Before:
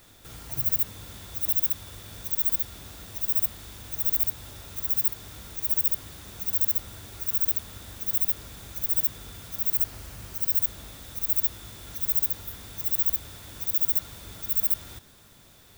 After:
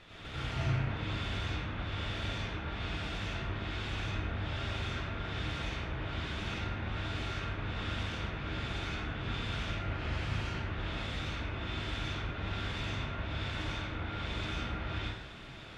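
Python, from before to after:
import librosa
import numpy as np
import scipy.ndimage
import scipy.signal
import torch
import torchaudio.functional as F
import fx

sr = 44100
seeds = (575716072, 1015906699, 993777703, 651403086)

y = fx.env_lowpass_down(x, sr, base_hz=1800.0, full_db=-21.0)
y = fx.lowpass_res(y, sr, hz=2800.0, q=1.7)
y = fx.rev_plate(y, sr, seeds[0], rt60_s=0.74, hf_ratio=0.8, predelay_ms=80, drr_db=-7.0)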